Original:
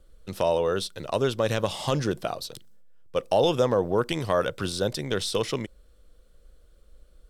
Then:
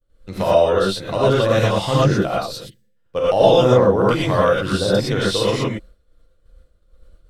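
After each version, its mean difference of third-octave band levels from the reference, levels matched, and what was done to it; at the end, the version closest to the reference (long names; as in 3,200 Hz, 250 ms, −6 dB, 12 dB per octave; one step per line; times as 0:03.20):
7.5 dB: gain on a spectral selection 0:02.55–0:02.97, 540–1,600 Hz −15 dB
downward expander −44 dBFS
high-shelf EQ 4,200 Hz −8 dB
reverb whose tail is shaped and stops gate 140 ms rising, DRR −7.5 dB
level +2 dB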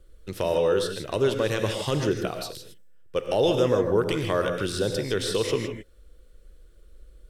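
4.5 dB: parametric band 740 Hz −13 dB 2.6 octaves
reverb whose tail is shaped and stops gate 180 ms rising, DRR 5 dB
in parallel at −3 dB: brickwall limiter −23 dBFS, peak gain reduction 7.5 dB
on the sum: drawn EQ curve 230 Hz 0 dB, 390 Hz +11 dB, 700 Hz +6 dB, 1,800 Hz +6 dB, 4,200 Hz −2 dB
level −2 dB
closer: second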